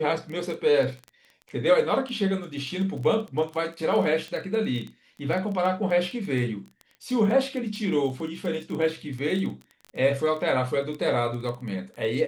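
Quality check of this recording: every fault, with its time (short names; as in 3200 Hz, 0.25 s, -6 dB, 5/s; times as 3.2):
crackle 14/s -30 dBFS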